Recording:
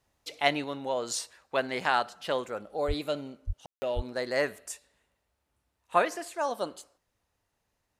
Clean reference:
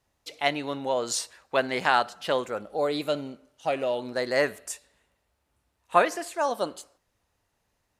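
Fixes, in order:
0:02.87–0:02.99: high-pass filter 140 Hz 24 dB per octave
0:03.46–0:03.58: high-pass filter 140 Hz 24 dB per octave
0:03.95–0:04.07: high-pass filter 140 Hz 24 dB per octave
ambience match 0:03.66–0:03.82
0:00.64: level correction +4 dB

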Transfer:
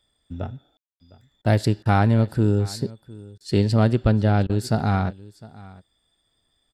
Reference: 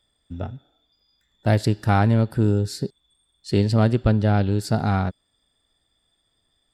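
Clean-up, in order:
ambience match 0:00.77–0:01.00
repair the gap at 0:01.42/0:01.83/0:03.38/0:04.47, 24 ms
echo removal 707 ms −21 dB

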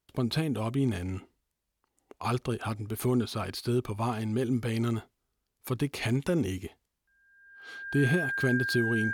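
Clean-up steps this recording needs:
notch filter 1,600 Hz, Q 30

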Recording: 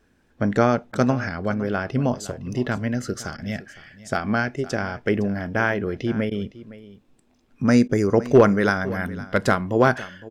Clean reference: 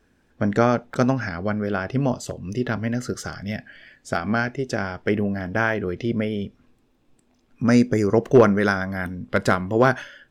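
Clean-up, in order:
repair the gap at 0:00.92/0:03.37/0:06.30/0:07.88, 11 ms
echo removal 511 ms −17.5 dB

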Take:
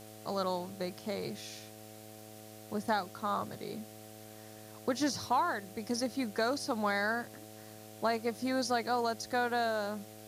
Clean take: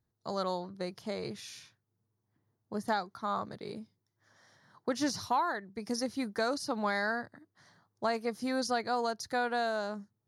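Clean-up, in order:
click removal
hum removal 107.9 Hz, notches 7
broadband denoise 30 dB, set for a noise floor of −51 dBFS

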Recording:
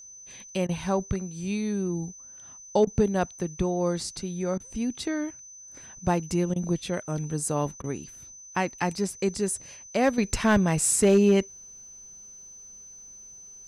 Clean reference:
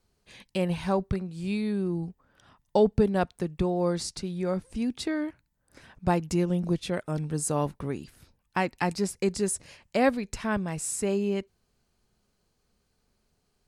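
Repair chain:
clipped peaks rebuilt −12 dBFS
notch filter 6,100 Hz, Q 30
repair the gap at 0:00.67/0:02.85/0:04.58/0:06.54/0:07.82, 18 ms
level 0 dB, from 0:10.18 −8.5 dB

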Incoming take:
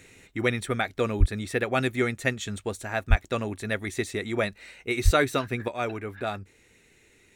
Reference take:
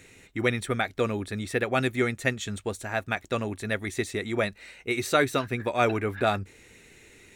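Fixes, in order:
0:01.19–0:01.31: high-pass filter 140 Hz 24 dB per octave
0:03.09–0:03.21: high-pass filter 140 Hz 24 dB per octave
0:05.04–0:05.16: high-pass filter 140 Hz 24 dB per octave
level 0 dB, from 0:05.68 +6.5 dB

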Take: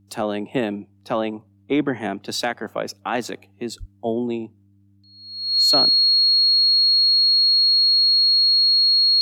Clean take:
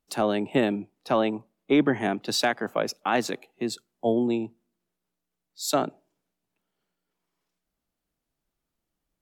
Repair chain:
hum removal 99.3 Hz, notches 3
notch filter 4,300 Hz, Q 30
high-pass at the plosives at 0:03.79

